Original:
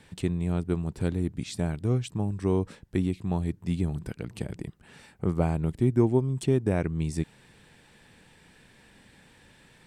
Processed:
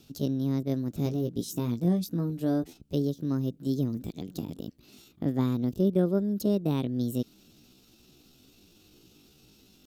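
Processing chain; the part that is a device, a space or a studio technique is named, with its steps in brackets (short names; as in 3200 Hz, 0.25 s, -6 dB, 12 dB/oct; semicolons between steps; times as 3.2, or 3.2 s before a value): band shelf 770 Hz -10.5 dB 2.6 oct; chipmunk voice (pitch shift +7.5 st); 1.04–2.64 doubler 17 ms -6 dB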